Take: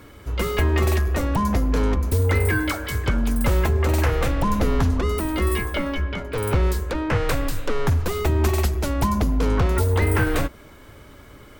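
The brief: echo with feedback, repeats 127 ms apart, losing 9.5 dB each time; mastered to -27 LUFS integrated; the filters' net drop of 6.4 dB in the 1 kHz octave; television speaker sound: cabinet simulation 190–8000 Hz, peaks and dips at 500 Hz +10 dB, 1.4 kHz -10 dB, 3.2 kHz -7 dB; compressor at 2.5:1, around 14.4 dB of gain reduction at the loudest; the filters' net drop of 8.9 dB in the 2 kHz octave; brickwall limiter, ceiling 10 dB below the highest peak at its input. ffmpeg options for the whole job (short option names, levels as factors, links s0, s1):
-af "equalizer=f=1000:t=o:g=-4.5,equalizer=f=2000:t=o:g=-5.5,acompressor=threshold=0.0112:ratio=2.5,alimiter=level_in=2.66:limit=0.0631:level=0:latency=1,volume=0.376,highpass=f=190:w=0.5412,highpass=f=190:w=1.3066,equalizer=f=500:t=q:w=4:g=10,equalizer=f=1400:t=q:w=4:g=-10,equalizer=f=3200:t=q:w=4:g=-7,lowpass=f=8000:w=0.5412,lowpass=f=8000:w=1.3066,aecho=1:1:127|254|381|508:0.335|0.111|0.0365|0.012,volume=5.96"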